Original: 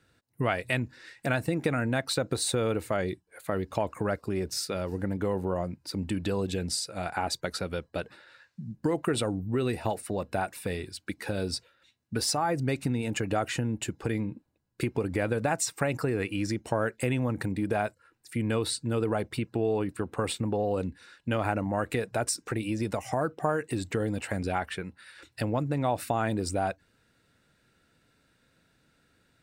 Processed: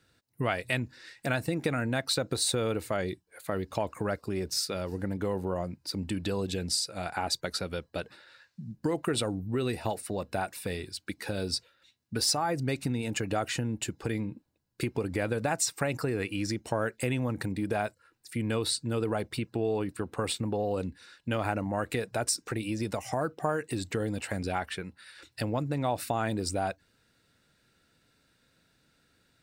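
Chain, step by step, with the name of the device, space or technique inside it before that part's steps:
presence and air boost (parametric band 4,600 Hz +4.5 dB 1.1 octaves; high-shelf EQ 11,000 Hz +5.5 dB)
level −2 dB

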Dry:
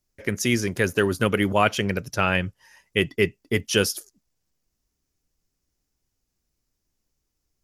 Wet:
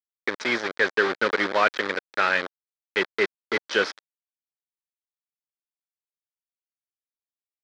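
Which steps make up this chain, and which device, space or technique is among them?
hand-held game console (bit reduction 4 bits; loudspeaker in its box 460–4,100 Hz, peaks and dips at 710 Hz −6 dB, 1,000 Hz −3 dB, 1,600 Hz +4 dB, 2,800 Hz −10 dB)
level +2 dB

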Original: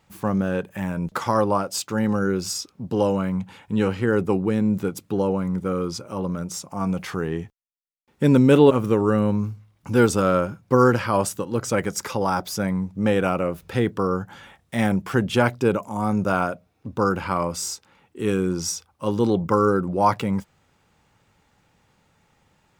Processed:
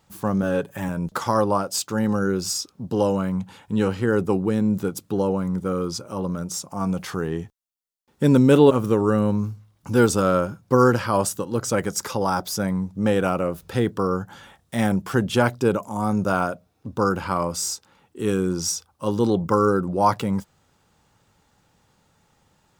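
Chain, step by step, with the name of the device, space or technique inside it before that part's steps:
exciter from parts (in parallel at −5.5 dB: high-pass filter 2,100 Hz 24 dB per octave + soft clipping −24 dBFS, distortion −15 dB)
0:00.42–0:00.89: on the sum: comb filter 7.2 ms, depth 72%

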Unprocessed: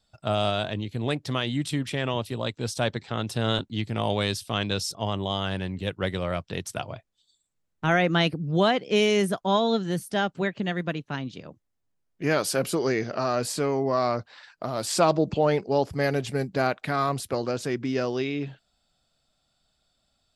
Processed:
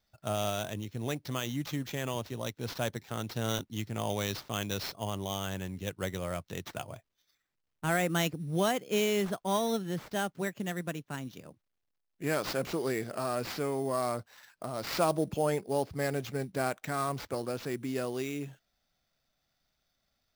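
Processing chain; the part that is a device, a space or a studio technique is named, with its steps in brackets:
early companding sampler (sample-rate reduction 9,600 Hz, jitter 0%; log-companded quantiser 8 bits)
level −7 dB

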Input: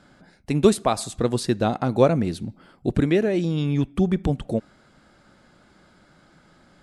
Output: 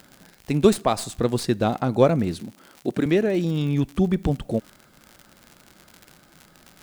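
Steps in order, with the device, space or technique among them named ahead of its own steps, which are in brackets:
0:02.40–0:03.06: high-pass filter 220 Hz 12 dB per octave
record under a worn stylus (stylus tracing distortion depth 0.036 ms; surface crackle 89 per second −32 dBFS; white noise bed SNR 42 dB)

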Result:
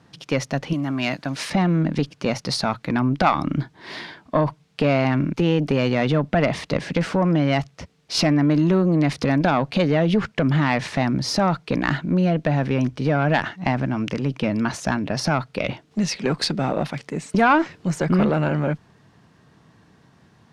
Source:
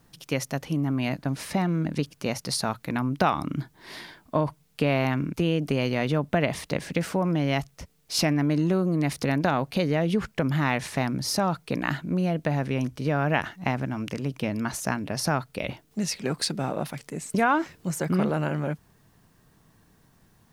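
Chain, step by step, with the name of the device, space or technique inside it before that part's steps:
valve radio (band-pass filter 89–4,800 Hz; tube saturation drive 13 dB, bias 0.45; saturating transformer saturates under 200 Hz)
0:00.73–0:01.50: spectral tilt +2.5 dB per octave
level +9 dB

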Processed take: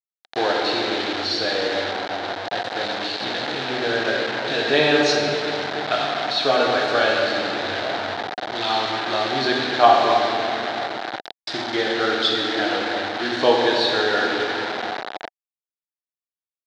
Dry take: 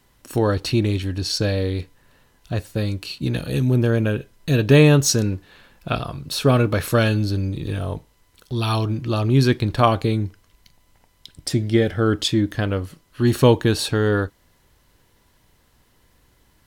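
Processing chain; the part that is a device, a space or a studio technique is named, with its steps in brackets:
rectangular room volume 130 cubic metres, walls hard, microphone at 0.54 metres
dynamic equaliser 180 Hz, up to −5 dB, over −20 dBFS, Q 1.1
hand-held game console (bit reduction 4 bits; loudspeaker in its box 480–4,400 Hz, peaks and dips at 510 Hz −3 dB, 740 Hz +8 dB, 1,100 Hz −5 dB, 1,600 Hz +4 dB, 2,600 Hz −4 dB, 3,900 Hz +6 dB)

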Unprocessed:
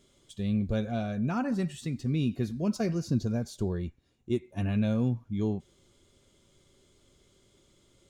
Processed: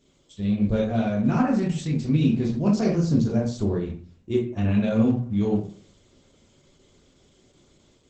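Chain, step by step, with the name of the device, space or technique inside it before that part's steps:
speakerphone in a meeting room (convolution reverb RT60 0.45 s, pre-delay 16 ms, DRR −1.5 dB; automatic gain control gain up to 4 dB; level −1 dB; Opus 12 kbit/s 48,000 Hz)

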